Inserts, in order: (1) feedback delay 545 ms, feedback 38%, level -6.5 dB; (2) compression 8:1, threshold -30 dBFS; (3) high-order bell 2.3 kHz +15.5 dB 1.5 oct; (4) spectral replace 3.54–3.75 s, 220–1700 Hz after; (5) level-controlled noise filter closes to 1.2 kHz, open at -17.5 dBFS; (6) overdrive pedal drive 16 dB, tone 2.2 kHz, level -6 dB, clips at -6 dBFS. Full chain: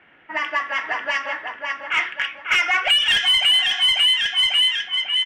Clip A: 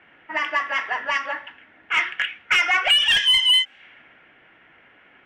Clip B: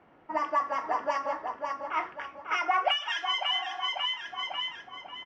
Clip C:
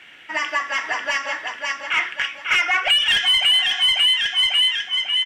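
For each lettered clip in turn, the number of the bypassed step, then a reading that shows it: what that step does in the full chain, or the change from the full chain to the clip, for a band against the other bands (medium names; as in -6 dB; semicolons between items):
1, crest factor change +2.5 dB; 3, crest factor change +5.5 dB; 5, momentary loudness spread change -1 LU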